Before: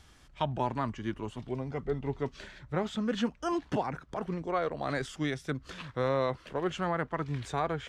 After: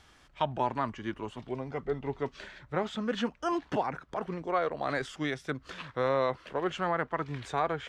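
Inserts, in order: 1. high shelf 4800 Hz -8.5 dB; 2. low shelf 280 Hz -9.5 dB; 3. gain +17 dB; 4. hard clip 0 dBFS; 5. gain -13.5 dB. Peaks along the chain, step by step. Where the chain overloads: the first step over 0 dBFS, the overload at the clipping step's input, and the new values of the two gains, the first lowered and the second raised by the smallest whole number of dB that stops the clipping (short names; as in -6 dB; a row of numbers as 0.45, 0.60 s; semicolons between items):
-17.0, -19.0, -2.0, -2.0, -15.5 dBFS; no overload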